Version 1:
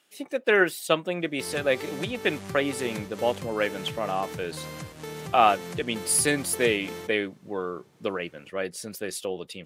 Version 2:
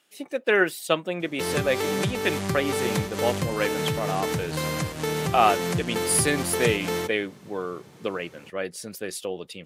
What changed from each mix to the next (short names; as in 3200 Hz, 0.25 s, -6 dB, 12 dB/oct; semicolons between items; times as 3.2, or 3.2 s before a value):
background +10.5 dB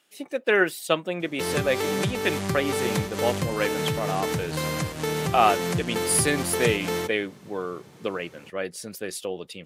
none